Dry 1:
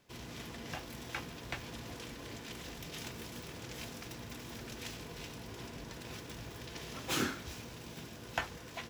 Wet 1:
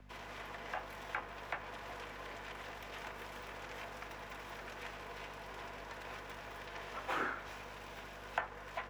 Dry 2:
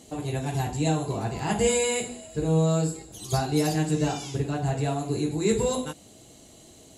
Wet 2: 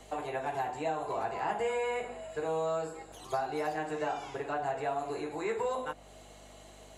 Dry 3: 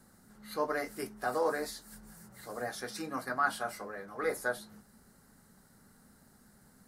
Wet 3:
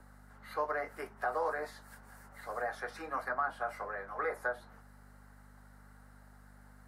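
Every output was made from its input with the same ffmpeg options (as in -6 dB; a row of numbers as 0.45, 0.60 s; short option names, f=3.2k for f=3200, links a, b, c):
-filter_complex "[0:a]aeval=exprs='val(0)+0.01*(sin(2*PI*50*n/s)+sin(2*PI*2*50*n/s)/2+sin(2*PI*3*50*n/s)/3+sin(2*PI*4*50*n/s)/4+sin(2*PI*5*50*n/s)/5)':c=same,acrossover=split=530 2500:gain=0.0708 1 0.2[a][b][c];[a][b][c]amix=inputs=3:normalize=0,acrossover=split=210|560|2000[d][e][f][g];[d]acompressor=threshold=-59dB:ratio=4[h];[e]acompressor=threshold=-44dB:ratio=4[i];[f]acompressor=threshold=-41dB:ratio=4[j];[g]acompressor=threshold=-60dB:ratio=4[k];[h][i][j][k]amix=inputs=4:normalize=0,volume=6.5dB"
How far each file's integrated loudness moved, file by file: -2.0, -8.0, -2.0 LU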